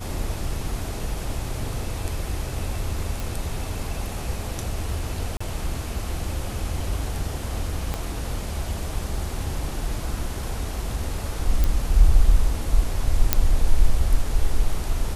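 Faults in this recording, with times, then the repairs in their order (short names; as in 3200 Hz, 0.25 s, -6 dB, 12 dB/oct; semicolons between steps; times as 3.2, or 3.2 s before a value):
3.2 pop
5.37–5.41 gap 35 ms
7.94 pop -13 dBFS
11.64 pop -9 dBFS
13.33 pop -1 dBFS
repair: de-click; interpolate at 5.37, 35 ms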